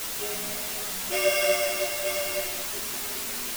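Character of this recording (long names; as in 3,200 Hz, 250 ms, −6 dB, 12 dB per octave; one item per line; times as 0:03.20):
a buzz of ramps at a fixed pitch in blocks of 16 samples
tremolo saw down 0.97 Hz, depth 55%
a quantiser's noise floor 6 bits, dither triangular
a shimmering, thickened sound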